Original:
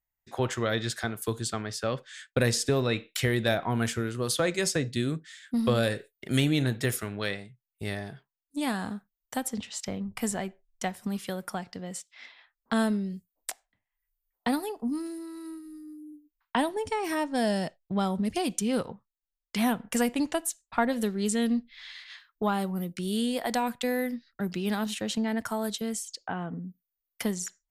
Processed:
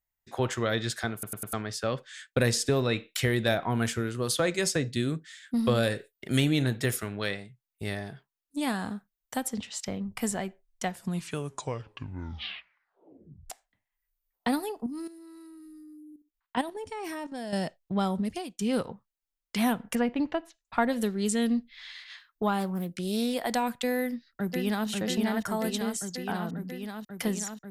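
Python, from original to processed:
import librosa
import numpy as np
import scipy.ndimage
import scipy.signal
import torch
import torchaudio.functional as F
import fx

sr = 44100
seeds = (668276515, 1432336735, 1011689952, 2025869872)

y = fx.level_steps(x, sr, step_db=12, at=(14.86, 17.53))
y = fx.air_absorb(y, sr, metres=300.0, at=(19.95, 20.65))
y = fx.doppler_dist(y, sr, depth_ms=0.17, at=(22.6, 23.34))
y = fx.echo_throw(y, sr, start_s=23.99, length_s=0.89, ms=540, feedback_pct=80, wet_db=-3.5)
y = fx.edit(y, sr, fx.stutter_over(start_s=1.13, slice_s=0.1, count=4),
    fx.tape_stop(start_s=10.84, length_s=2.66),
    fx.fade_out_span(start_s=18.17, length_s=0.42), tone=tone)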